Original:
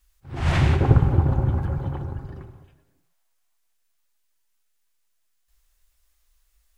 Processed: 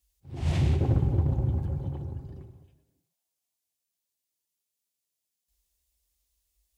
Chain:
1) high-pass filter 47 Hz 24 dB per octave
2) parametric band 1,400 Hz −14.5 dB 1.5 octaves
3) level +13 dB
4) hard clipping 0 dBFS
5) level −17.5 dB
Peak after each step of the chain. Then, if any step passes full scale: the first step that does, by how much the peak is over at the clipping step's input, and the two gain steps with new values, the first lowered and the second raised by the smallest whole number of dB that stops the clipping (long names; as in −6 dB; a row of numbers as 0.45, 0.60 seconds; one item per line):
−2.5, −3.0, +10.0, 0.0, −17.5 dBFS
step 3, 10.0 dB
step 3 +3 dB, step 5 −7.5 dB